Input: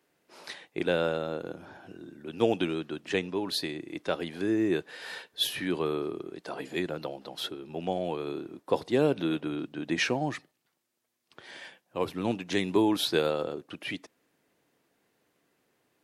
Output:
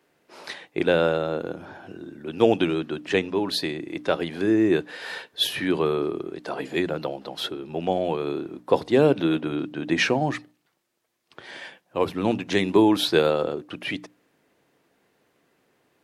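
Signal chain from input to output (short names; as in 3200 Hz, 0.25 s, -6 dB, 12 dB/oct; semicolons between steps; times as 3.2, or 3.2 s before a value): high shelf 4700 Hz -6 dB; notches 60/120/180/240/300 Hz; gain +7 dB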